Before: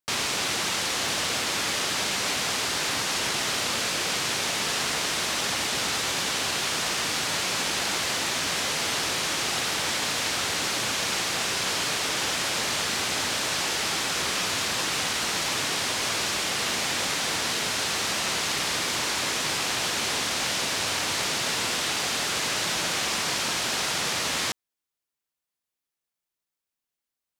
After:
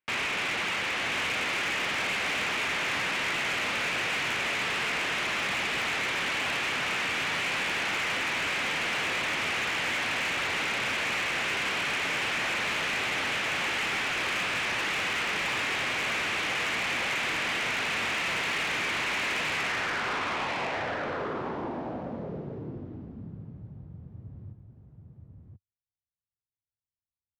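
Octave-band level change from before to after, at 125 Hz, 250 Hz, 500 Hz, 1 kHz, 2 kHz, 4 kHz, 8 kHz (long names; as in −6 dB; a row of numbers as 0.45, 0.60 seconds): −2.5, −2.5, −2.5, −2.0, +1.5, −6.5, −13.5 decibels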